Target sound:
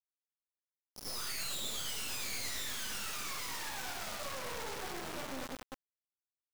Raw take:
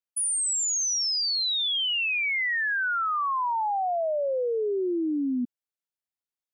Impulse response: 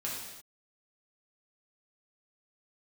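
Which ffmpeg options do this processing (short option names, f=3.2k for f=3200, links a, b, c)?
-filter_complex "[0:a]asplit=3[a][b][c];[b]asetrate=66075,aresample=44100,atempo=0.66742,volume=-14dB[d];[c]asetrate=88200,aresample=44100,atempo=0.5,volume=-2dB[e];[a][d][e]amix=inputs=3:normalize=0,areverse,acompressor=mode=upward:threshold=-35dB:ratio=2.5,areverse,highshelf=f=3.8k:g=6.5,asplit=2[f][g];[g]adelay=15,volume=-7.5dB[h];[f][h]amix=inputs=2:normalize=0,bandreject=f=136.9:t=h:w=4,bandreject=f=273.8:t=h:w=4,bandreject=f=410.7:t=h:w=4,bandreject=f=547.6:t=h:w=4,bandreject=f=684.5:t=h:w=4,bandreject=f=821.4:t=h:w=4,bandreject=f=958.3:t=h:w=4,bandreject=f=1.0952k:t=h:w=4,bandreject=f=1.2321k:t=h:w=4,bandreject=f=1.369k:t=h:w=4,bandreject=f=1.5059k:t=h:w=4,bandreject=f=1.6428k:t=h:w=4,bandreject=f=1.7797k:t=h:w=4,bandreject=f=1.9166k:t=h:w=4,bandreject=f=2.0535k:t=h:w=4,bandreject=f=2.1904k:t=h:w=4,bandreject=f=2.3273k:t=h:w=4,bandreject=f=2.4642k:t=h:w=4,bandreject=f=2.6011k:t=h:w=4,bandreject=f=2.738k:t=h:w=4,bandreject=f=2.8749k:t=h:w=4,bandreject=f=3.0118k:t=h:w=4,bandreject=f=3.1487k:t=h:w=4,bandreject=f=3.2856k:t=h:w=4,bandreject=f=3.4225k:t=h:w=4,bandreject=f=3.5594k:t=h:w=4,bandreject=f=3.6963k:t=h:w=4,bandreject=f=3.8332k:t=h:w=4,bandreject=f=3.9701k:t=h:w=4,bandreject=f=4.107k:t=h:w=4,bandreject=f=4.2439k:t=h:w=4,bandreject=f=4.3808k:t=h:w=4,bandreject=f=4.5177k:t=h:w=4,bandreject=f=4.6546k:t=h:w=4,aresample=11025,aeval=exprs='max(val(0),0)':c=same,aresample=44100,tremolo=f=8.5:d=0.94,aecho=1:1:196|392|588|784:0.1|0.05|0.025|0.0125,aeval=exprs='(tanh(141*val(0)+0.55)-tanh(0.55))/141':c=same[i];[1:a]atrim=start_sample=2205,atrim=end_sample=6174,asetrate=39690,aresample=44100[j];[i][j]afir=irnorm=-1:irlink=0,acrusher=bits=5:dc=4:mix=0:aa=0.000001,volume=8dB"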